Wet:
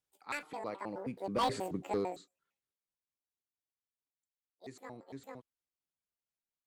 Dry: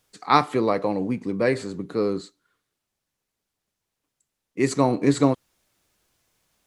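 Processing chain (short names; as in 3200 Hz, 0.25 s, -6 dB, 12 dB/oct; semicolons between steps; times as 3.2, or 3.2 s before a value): trilling pitch shifter +11 st, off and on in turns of 0.11 s; Doppler pass-by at 1.64, 12 m/s, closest 2.7 m; one-sided clip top -23.5 dBFS; gain -5 dB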